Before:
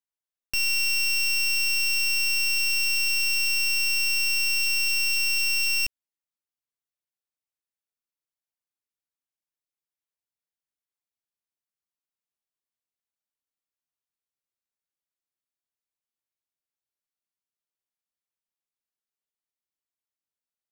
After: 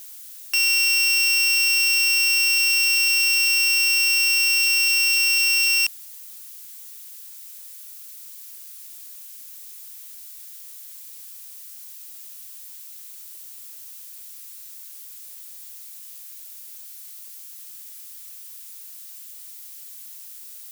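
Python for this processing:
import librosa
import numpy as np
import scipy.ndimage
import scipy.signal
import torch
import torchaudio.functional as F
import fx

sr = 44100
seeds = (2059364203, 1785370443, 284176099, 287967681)

y = x + 0.5 * 10.0 ** (-39.5 / 20.0) * np.diff(np.sign(x), prepend=np.sign(x[:1]))
y = scipy.signal.sosfilt(scipy.signal.butter(4, 730.0, 'highpass', fs=sr, output='sos'), y)
y = y * librosa.db_to_amplitude(5.5)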